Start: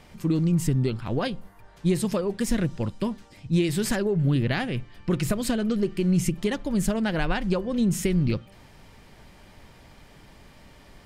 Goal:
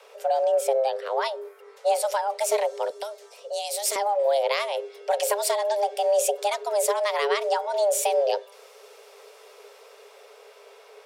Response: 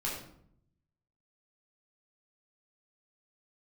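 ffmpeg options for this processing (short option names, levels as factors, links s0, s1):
-filter_complex "[0:a]acrossover=split=320|3900[s0][s1][s2];[s2]dynaudnorm=f=860:g=5:m=2.24[s3];[s0][s1][s3]amix=inputs=3:normalize=0,afreqshift=400,asettb=1/sr,asplit=3[s4][s5][s6];[s4]atrim=end=2.904[s7];[s5]atrim=start=2.9:end=3.96,asetpts=PTS-STARTPTS,afade=t=in:d=0.004:c=qsin,afade=t=out:st=1.056:d=0.004:c=qsin,acrossover=split=350|3000[s8][s9][s10];[s9]acompressor=threshold=0.0224:ratio=6[s11];[s8][s11][s10]amix=inputs=3:normalize=0[s12];[s6]atrim=start=3.956[s13];[s7][s12]acrossfade=d=0.004:c1=hsin:c2=qsin[s14];[s14][s13]acrossfade=d=0.004:c1=qsin:c2=hsin"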